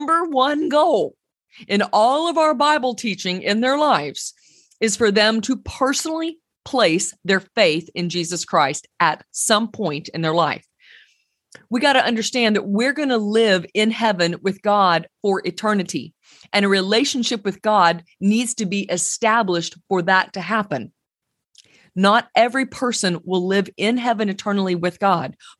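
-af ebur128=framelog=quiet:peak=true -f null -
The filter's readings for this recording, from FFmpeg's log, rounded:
Integrated loudness:
  I:         -19.1 LUFS
  Threshold: -29.5 LUFS
Loudness range:
  LRA:         2.4 LU
  Threshold: -39.6 LUFS
  LRA low:   -20.8 LUFS
  LRA high:  -18.4 LUFS
True peak:
  Peak:       -1.2 dBFS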